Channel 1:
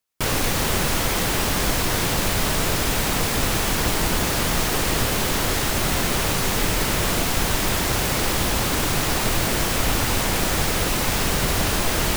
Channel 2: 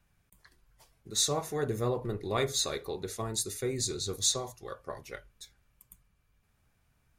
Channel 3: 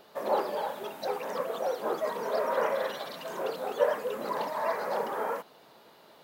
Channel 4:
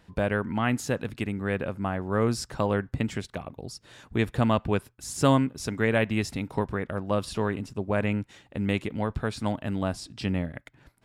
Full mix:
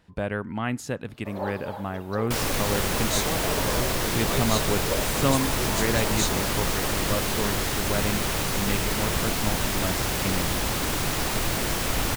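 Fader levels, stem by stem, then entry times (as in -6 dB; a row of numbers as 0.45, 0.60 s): -4.5, -1.5, -5.0, -2.5 dB; 2.10, 1.95, 1.10, 0.00 s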